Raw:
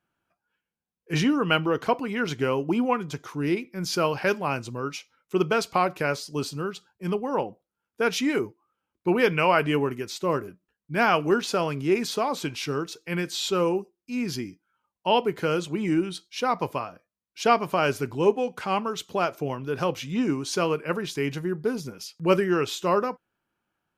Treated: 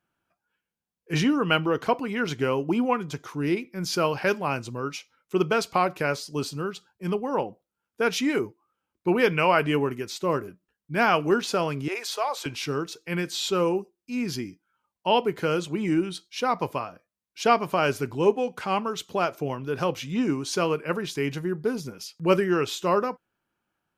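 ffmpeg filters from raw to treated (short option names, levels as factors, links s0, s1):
-filter_complex "[0:a]asettb=1/sr,asplit=3[s0][s1][s2];[s0]atrim=end=11.884[s3];[s1]atrim=start=11.88:end=12.46,asetpts=PTS-STARTPTS,afade=t=in:d=0.004:c=qsin,afade=t=out:st=0.576:d=0.004:c=qsin,highpass=f=530:w=0.5412,highpass=f=530:w=1.3066[s4];[s2]atrim=start=12.456[s5];[s3][s4]acrossfade=d=0.004:c1=hsin:c2=qsin[s6];[s6][s5]acrossfade=d=0.004:c1=qsin:c2=hsin"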